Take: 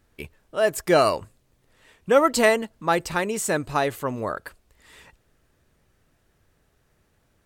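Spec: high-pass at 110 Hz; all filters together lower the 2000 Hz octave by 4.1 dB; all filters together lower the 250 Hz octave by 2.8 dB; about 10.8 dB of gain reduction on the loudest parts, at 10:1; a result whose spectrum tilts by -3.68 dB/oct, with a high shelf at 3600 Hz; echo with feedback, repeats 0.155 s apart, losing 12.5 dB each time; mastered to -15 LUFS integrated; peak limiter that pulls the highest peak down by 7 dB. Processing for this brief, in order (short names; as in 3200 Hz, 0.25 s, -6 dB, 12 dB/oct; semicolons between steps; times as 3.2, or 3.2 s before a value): HPF 110 Hz; bell 250 Hz -3.5 dB; bell 2000 Hz -7 dB; high shelf 3600 Hz +8 dB; compressor 10:1, threshold -24 dBFS; limiter -19.5 dBFS; feedback echo 0.155 s, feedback 24%, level -12.5 dB; gain +16.5 dB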